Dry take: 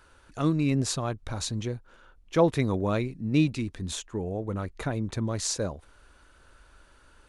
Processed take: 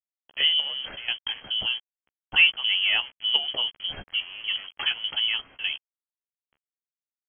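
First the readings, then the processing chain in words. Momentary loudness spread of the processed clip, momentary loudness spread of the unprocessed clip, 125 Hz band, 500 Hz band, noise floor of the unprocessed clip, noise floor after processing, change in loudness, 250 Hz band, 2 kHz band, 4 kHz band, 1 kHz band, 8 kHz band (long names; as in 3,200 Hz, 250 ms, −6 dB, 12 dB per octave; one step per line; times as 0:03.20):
12 LU, 10 LU, below −25 dB, −18.5 dB, −58 dBFS, below −85 dBFS, +4.5 dB, −27.0 dB, +14.5 dB, +18.0 dB, −6.5 dB, below −40 dB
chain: high-shelf EQ 2,500 Hz +3 dB
in parallel at −3 dB: soft clipping −27.5 dBFS, distortion −7 dB
on the sum: gate pattern "x.xxx..x.x" 125 BPM −12 dB
centre clipping without the shift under −39.5 dBFS
double-tracking delay 14 ms −8 dB
voice inversion scrambler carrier 3,200 Hz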